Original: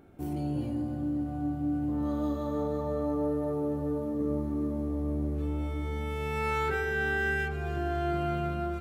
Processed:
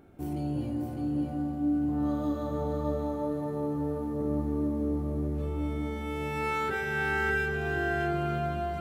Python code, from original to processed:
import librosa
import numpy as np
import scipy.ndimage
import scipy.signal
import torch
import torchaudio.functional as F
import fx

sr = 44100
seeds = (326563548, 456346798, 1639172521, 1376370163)

y = x + 10.0 ** (-5.0 / 20.0) * np.pad(x, (int(606 * sr / 1000.0), 0))[:len(x)]